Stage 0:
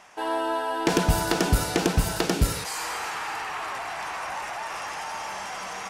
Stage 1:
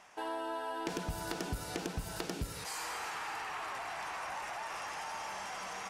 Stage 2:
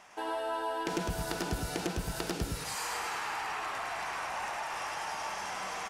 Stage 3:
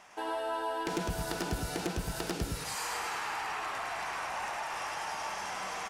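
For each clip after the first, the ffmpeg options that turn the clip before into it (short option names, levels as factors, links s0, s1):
-af "acompressor=threshold=0.0355:ratio=4,volume=0.447"
-af "aecho=1:1:105:0.668,volume=1.33"
-af "aeval=exprs='0.0631*(abs(mod(val(0)/0.0631+3,4)-2)-1)':c=same"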